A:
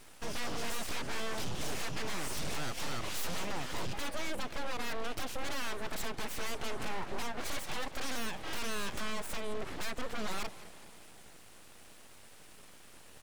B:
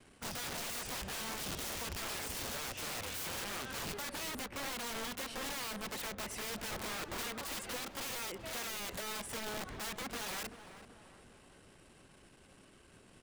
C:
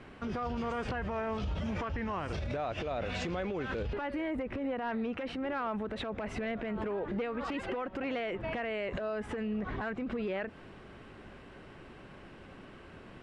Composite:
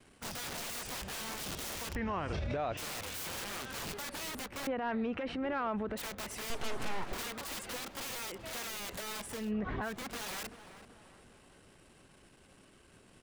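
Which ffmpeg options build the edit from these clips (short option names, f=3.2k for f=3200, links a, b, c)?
-filter_complex "[2:a]asplit=3[a][b][c];[1:a]asplit=5[d][e][f][g][h];[d]atrim=end=1.952[i];[a]atrim=start=1.948:end=2.772[j];[e]atrim=start=2.768:end=4.672[k];[b]atrim=start=4.668:end=5.972[l];[f]atrim=start=5.968:end=6.502[m];[0:a]atrim=start=6.498:end=7.132[n];[g]atrim=start=7.128:end=9.52[o];[c]atrim=start=9.28:end=10.05[p];[h]atrim=start=9.81[q];[i][j]acrossfade=d=0.004:c1=hsin:c2=hsin[r];[r][k]acrossfade=d=0.004:c1=hsin:c2=hsin[s];[s][l]acrossfade=d=0.004:c1=hsin:c2=hsin[t];[t][m]acrossfade=d=0.004:c1=hsin:c2=hsin[u];[u][n]acrossfade=d=0.004:c1=hsin:c2=hsin[v];[v][o]acrossfade=d=0.004:c1=hsin:c2=hsin[w];[w][p]acrossfade=d=0.24:c1=tri:c2=tri[x];[x][q]acrossfade=d=0.24:c1=tri:c2=tri"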